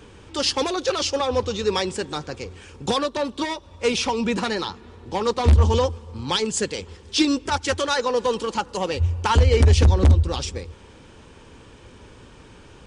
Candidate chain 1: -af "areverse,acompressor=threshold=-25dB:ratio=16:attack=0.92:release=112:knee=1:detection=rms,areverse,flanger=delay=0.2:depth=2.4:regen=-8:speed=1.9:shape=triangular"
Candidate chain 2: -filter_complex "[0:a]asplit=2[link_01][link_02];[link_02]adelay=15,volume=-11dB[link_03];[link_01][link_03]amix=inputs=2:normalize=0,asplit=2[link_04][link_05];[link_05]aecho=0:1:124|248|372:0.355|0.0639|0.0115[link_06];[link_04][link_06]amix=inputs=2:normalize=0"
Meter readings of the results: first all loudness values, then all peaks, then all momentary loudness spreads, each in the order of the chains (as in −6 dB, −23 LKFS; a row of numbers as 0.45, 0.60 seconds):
−35.0, −21.0 LKFS; −22.5, −4.0 dBFS; 17, 15 LU